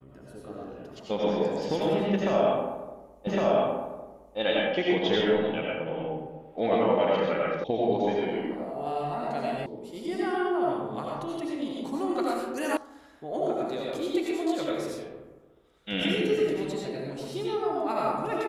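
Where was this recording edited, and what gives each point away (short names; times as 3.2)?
3.27 repeat of the last 1.11 s
7.64 sound cut off
9.66 sound cut off
12.77 sound cut off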